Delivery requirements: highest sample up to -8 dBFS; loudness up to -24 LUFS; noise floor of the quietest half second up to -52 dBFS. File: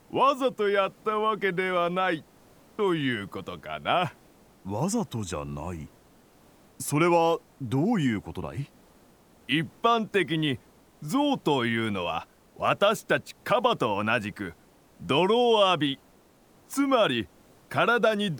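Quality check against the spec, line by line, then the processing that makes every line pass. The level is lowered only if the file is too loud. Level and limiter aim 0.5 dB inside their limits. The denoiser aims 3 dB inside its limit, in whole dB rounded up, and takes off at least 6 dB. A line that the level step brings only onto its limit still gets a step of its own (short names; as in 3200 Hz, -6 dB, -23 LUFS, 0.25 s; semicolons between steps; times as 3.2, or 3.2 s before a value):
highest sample -9.5 dBFS: OK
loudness -26.5 LUFS: OK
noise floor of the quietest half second -58 dBFS: OK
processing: none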